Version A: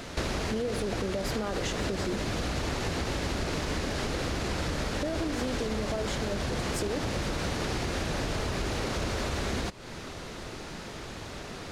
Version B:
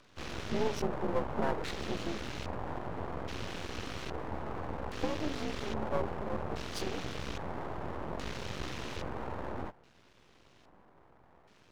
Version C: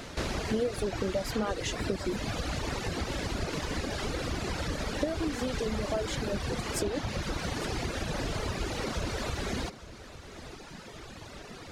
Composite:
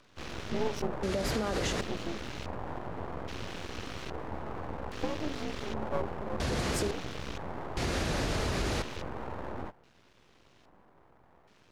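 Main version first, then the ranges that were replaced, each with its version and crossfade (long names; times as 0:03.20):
B
0:01.03–0:01.81: punch in from A
0:06.40–0:06.91: punch in from A
0:07.77–0:08.82: punch in from A
not used: C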